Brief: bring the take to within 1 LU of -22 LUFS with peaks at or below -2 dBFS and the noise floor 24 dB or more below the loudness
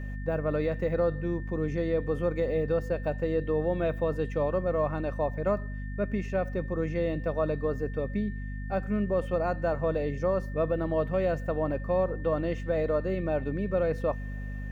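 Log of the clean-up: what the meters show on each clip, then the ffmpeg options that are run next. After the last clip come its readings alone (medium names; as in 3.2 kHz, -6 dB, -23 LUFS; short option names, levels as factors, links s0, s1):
hum 50 Hz; highest harmonic 250 Hz; hum level -33 dBFS; steady tone 1.8 kHz; tone level -47 dBFS; loudness -29.5 LUFS; peak level -15.5 dBFS; loudness target -22.0 LUFS
-> -af "bandreject=f=50:t=h:w=6,bandreject=f=100:t=h:w=6,bandreject=f=150:t=h:w=6,bandreject=f=200:t=h:w=6,bandreject=f=250:t=h:w=6"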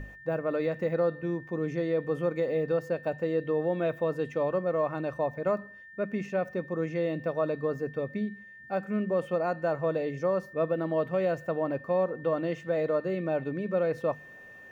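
hum not found; steady tone 1.8 kHz; tone level -47 dBFS
-> -af "bandreject=f=1800:w=30"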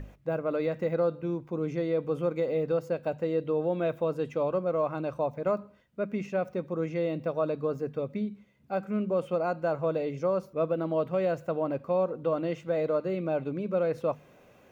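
steady tone not found; loudness -30.5 LUFS; peak level -17.0 dBFS; loudness target -22.0 LUFS
-> -af "volume=2.66"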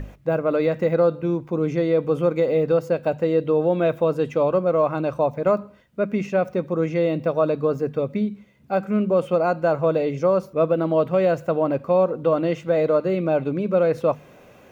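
loudness -22.0 LUFS; peak level -8.5 dBFS; noise floor -49 dBFS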